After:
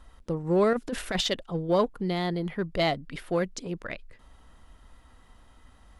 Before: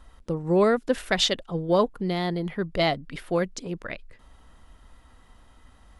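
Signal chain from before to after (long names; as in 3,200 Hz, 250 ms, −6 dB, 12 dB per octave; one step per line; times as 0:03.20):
in parallel at −11 dB: hard clipping −24 dBFS, distortion −7 dB
0:00.73–0:01.27: on the sum: compressor whose output falls as the input rises −23 dBFS, ratio −0.5
level −3.5 dB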